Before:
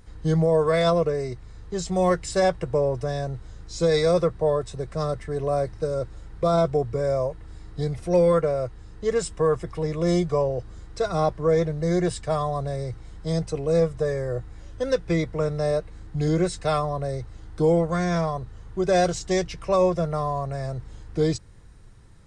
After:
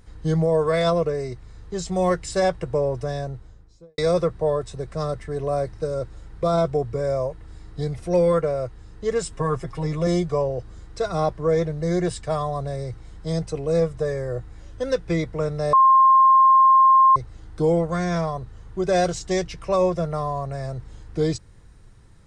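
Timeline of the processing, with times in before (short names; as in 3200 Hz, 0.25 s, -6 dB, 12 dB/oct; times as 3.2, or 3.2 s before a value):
3.1–3.98 studio fade out
9.32–10.07 comb 7.4 ms, depth 74%
15.73–17.16 bleep 1060 Hz -10.5 dBFS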